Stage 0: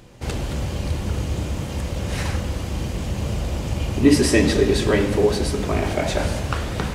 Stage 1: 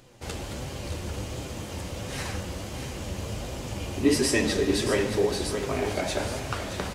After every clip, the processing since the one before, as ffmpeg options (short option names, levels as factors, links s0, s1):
-af "flanger=delay=7.4:depth=3.8:regen=50:speed=1.4:shape=sinusoidal,bass=f=250:g=-5,treble=f=4000:g=3,aecho=1:1:624:0.335,volume=0.841"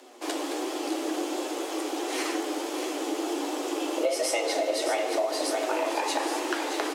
-af "acompressor=threshold=0.0447:ratio=6,afreqshift=240,volume=1.5"